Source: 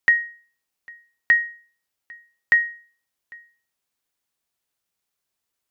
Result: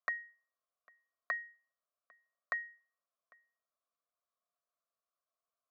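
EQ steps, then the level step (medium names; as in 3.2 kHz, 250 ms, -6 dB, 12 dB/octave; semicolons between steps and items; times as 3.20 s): vowel filter a; dynamic bell 1.8 kHz, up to +4 dB, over -56 dBFS, Q 0.87; static phaser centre 530 Hz, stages 8; +8.0 dB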